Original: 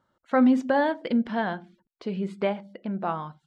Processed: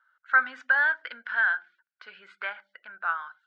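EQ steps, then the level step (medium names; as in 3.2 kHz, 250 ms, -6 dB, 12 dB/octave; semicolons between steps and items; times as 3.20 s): resonant high-pass 1.5 kHz, resonance Q 11; low-pass 4.2 kHz 12 dB/octave; -3.5 dB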